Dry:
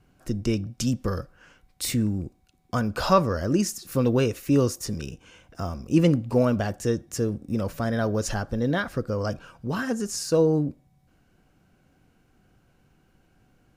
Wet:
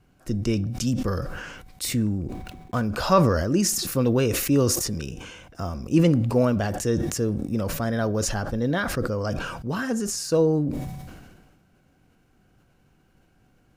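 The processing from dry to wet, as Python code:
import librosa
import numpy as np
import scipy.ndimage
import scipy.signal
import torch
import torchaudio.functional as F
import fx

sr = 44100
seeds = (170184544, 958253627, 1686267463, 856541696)

y = fx.median_filter(x, sr, points=9, at=(1.99, 2.85))
y = fx.sustainer(y, sr, db_per_s=38.0)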